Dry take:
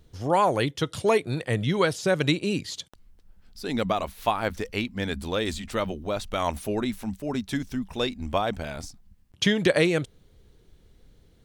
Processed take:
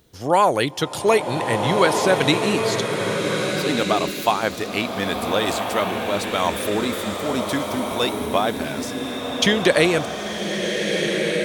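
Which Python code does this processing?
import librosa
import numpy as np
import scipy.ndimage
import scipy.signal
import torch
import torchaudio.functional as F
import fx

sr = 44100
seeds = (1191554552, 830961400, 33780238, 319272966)

y = fx.highpass(x, sr, hz=240.0, slope=6)
y = fx.high_shelf(y, sr, hz=11000.0, db=9.0)
y = fx.rev_bloom(y, sr, seeds[0], attack_ms=1570, drr_db=2.0)
y = y * librosa.db_to_amplitude(5.5)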